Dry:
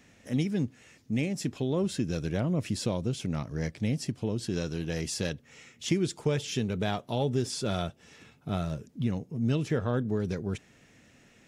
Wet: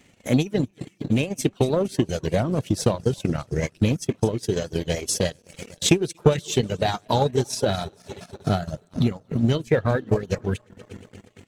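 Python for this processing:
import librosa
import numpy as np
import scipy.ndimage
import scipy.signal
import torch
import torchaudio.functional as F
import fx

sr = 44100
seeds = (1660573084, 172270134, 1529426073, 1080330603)

y = fx.reverse_delay_fb(x, sr, ms=118, feedback_pct=80, wet_db=-13.0)
y = fx.dereverb_blind(y, sr, rt60_s=0.93)
y = fx.leveller(y, sr, passes=1)
y = fx.dynamic_eq(y, sr, hz=210.0, q=1.3, threshold_db=-39.0, ratio=4.0, max_db=-4)
y = fx.transient(y, sr, attack_db=8, sustain_db=-11)
y = fx.formant_shift(y, sr, semitones=2)
y = y * librosa.db_to_amplitude(4.0)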